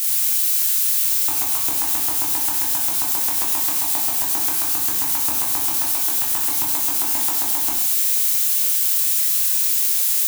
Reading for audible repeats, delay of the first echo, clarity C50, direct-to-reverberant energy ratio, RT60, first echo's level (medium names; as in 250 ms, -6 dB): no echo, no echo, 3.0 dB, -4.0 dB, 0.85 s, no echo